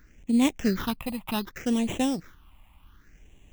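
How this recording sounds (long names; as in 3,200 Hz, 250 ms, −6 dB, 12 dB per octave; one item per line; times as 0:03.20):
aliases and images of a low sample rate 4,500 Hz, jitter 0%
phaser sweep stages 6, 0.66 Hz, lowest notch 410–1,400 Hz
AAC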